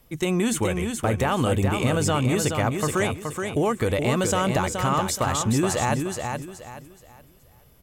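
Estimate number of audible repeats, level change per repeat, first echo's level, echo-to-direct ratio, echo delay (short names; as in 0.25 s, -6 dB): 3, -10.5 dB, -5.5 dB, -5.0 dB, 0.424 s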